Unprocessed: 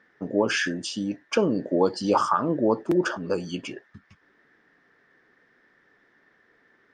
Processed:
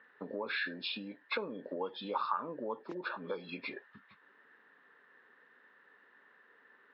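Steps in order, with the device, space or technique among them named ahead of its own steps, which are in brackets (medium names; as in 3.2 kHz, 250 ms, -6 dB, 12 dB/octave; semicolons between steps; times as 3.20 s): hearing aid with frequency lowering (knee-point frequency compression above 1.8 kHz 1.5:1; compression 4:1, threshold -33 dBFS, peak gain reduction 14.5 dB; cabinet simulation 320–5300 Hz, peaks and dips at 330 Hz -9 dB, 680 Hz -7 dB, 1 kHz +4 dB)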